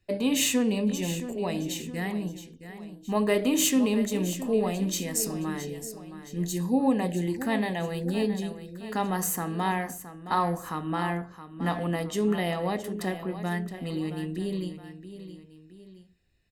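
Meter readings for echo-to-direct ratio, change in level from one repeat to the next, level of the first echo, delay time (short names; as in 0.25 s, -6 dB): -11.0 dB, -6.5 dB, -12.0 dB, 0.669 s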